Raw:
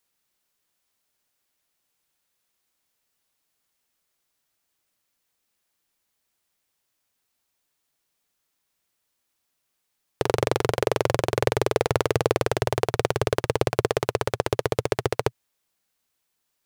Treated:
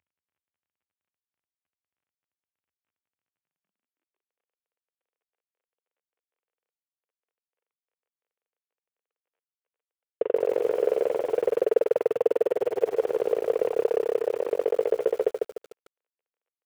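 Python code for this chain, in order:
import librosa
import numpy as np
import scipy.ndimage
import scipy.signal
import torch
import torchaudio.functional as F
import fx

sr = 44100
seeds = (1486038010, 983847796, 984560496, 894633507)

y = fx.cvsd(x, sr, bps=16000)
y = fx.filter_sweep_highpass(y, sr, from_hz=81.0, to_hz=470.0, start_s=3.12, end_s=4.31, q=4.7)
y = fx.echo_crushed(y, sr, ms=149, feedback_pct=35, bits=7, wet_db=-3.5)
y = F.gain(torch.from_numpy(y), -5.0).numpy()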